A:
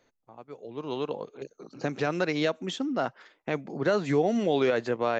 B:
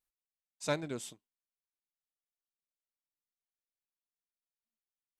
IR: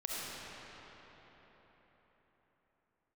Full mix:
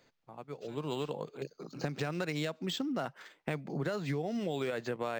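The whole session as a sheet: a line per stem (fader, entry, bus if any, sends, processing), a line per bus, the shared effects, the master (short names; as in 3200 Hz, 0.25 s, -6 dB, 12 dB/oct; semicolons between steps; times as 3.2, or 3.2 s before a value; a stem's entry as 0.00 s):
-1.0 dB, 0.00 s, no send, bell 150 Hz +8.5 dB 0.58 oct; compressor 6:1, threshold -31 dBFS, peak gain reduction 12.5 dB
-18.5 dB, 0.00 s, no send, de-esser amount 95%; limiter -29 dBFS, peak gain reduction 8 dB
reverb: off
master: high shelf 2600 Hz +9.5 dB; decimation joined by straight lines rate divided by 4×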